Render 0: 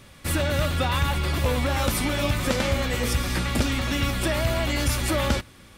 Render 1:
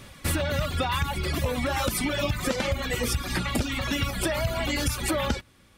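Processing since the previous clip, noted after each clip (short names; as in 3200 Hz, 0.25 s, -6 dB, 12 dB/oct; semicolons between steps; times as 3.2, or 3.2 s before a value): reverb removal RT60 1.9 s; compressor, threshold -26 dBFS, peak gain reduction 8 dB; gain +3.5 dB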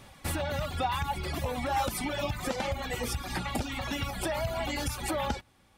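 bell 800 Hz +10 dB 0.47 oct; gain -6.5 dB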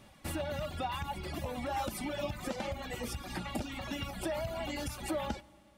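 small resonant body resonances 210/320/600/2800 Hz, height 6 dB; on a send at -21.5 dB: reverb RT60 3.1 s, pre-delay 30 ms; on the sum: gain -7 dB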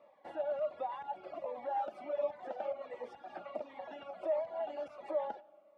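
ladder band-pass 710 Hz, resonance 55%; cascading phaser falling 1.4 Hz; gain +10 dB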